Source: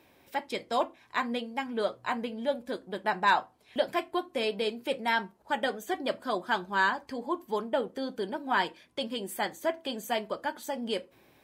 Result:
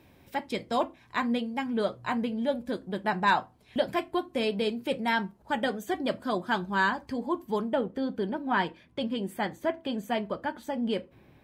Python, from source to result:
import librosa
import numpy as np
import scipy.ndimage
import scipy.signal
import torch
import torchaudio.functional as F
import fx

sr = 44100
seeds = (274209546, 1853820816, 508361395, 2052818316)

y = fx.bass_treble(x, sr, bass_db=12, treble_db=fx.steps((0.0, -1.0), (7.74, -10.0)))